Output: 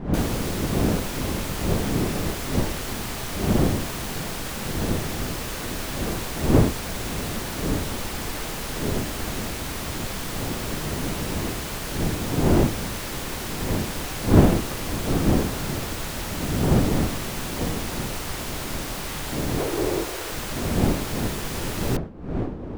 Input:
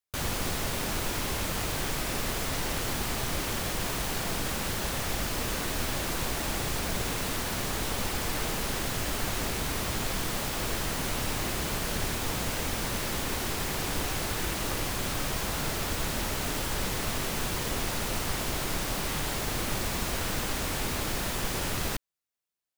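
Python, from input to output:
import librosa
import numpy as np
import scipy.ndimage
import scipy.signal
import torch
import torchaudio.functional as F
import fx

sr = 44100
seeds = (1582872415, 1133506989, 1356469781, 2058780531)

y = fx.dmg_wind(x, sr, seeds[0], corner_hz=290.0, level_db=-26.0)
y = fx.low_shelf_res(y, sr, hz=280.0, db=-7.5, q=3.0, at=(19.58, 20.32))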